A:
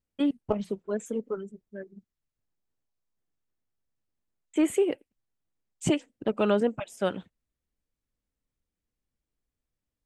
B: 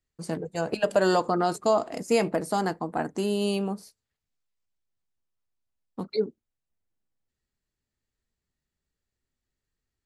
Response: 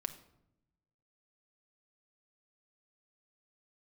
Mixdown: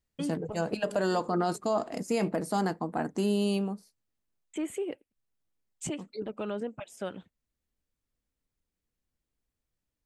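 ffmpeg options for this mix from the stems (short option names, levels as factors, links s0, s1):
-filter_complex "[0:a]alimiter=level_in=1.19:limit=0.0631:level=0:latency=1:release=481,volume=0.841,volume=1[s0];[1:a]equalizer=f=210:t=o:w=0.77:g=4,volume=0.75,afade=t=out:st=3.52:d=0.33:silence=0.316228,asplit=2[s1][s2];[s2]apad=whole_len=443257[s3];[s0][s3]sidechaincompress=threshold=0.0251:ratio=8:attack=16:release=402[s4];[s4][s1]amix=inputs=2:normalize=0,alimiter=limit=0.112:level=0:latency=1:release=30"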